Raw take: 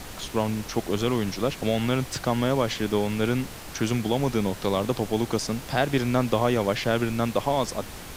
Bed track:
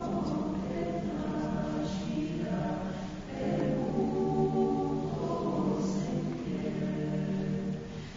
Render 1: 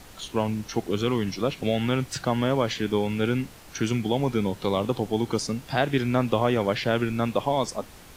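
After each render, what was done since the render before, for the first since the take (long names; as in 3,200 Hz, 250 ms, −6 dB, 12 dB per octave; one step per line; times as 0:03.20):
noise reduction from a noise print 8 dB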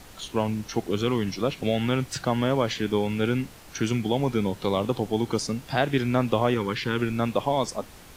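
0:06.54–0:06.99: Chebyshev band-stop filter 440–940 Hz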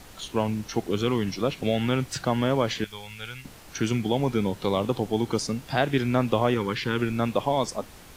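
0:02.84–0:03.45: guitar amp tone stack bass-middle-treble 10-0-10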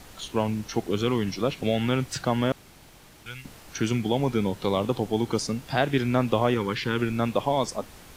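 0:02.52–0:03.26: fill with room tone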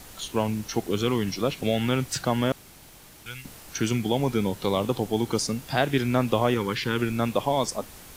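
high-shelf EQ 7,100 Hz +9 dB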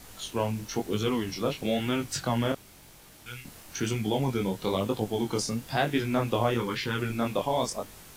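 chorus effect 1 Hz, delay 18.5 ms, depth 7.8 ms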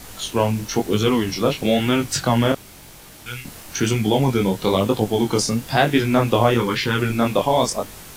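level +9.5 dB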